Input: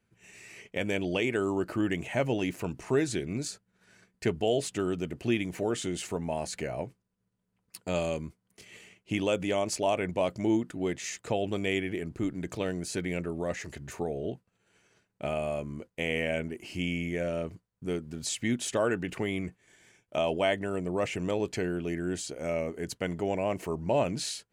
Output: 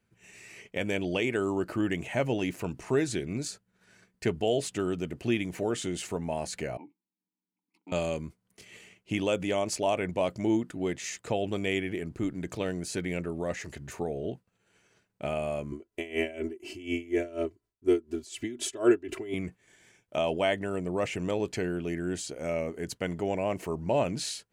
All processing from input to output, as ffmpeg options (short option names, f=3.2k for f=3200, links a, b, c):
-filter_complex "[0:a]asettb=1/sr,asplit=3[a][b][c];[a]atrim=end=6.774[d];[b]atrim=start=6.77:end=7.92,asetpts=PTS-STARTPTS,afade=t=in:d=0.004:c=qsin,afade=t=out:st=1.146:d=0.004:c=qsin,asplit=3[e][f][g];[e]bandpass=f=300:t=q:w=8,volume=0dB[h];[f]bandpass=f=870:t=q:w=8,volume=-6dB[i];[g]bandpass=f=2.24k:t=q:w=8,volume=-9dB[j];[h][i][j]amix=inputs=3:normalize=0,lowshelf=f=140:t=q:w=1.5:g=-7.5[k];[c]atrim=start=7.916[l];[d][k]acrossfade=d=0.004:c1=hsin:c2=qsin[m];[m][l]acrossfade=d=0.004:c1=qsin:c2=hsin,asettb=1/sr,asplit=3[n][o][p];[n]atrim=end=15.724[q];[o]atrim=start=15.72:end=19.34,asetpts=PTS-STARTPTS,afade=t=in:d=0.004:c=qsin,afade=t=out:st=3.616:d=0.004:c=qsin,equalizer=f=380:t=o:w=0.49:g=11,aecho=1:1:3:0.87,atrim=end_sample=159642,aeval=exprs='val(0)*pow(10,-19*(0.5-0.5*cos(2*PI*4.1*n/s))/20)':c=same[r];[p]atrim=start=19.336[s];[q][r]acrossfade=d=0.004:c1=hsin:c2=qsin[t];[t][s]acrossfade=d=0.004:c1=qsin:c2=hsin"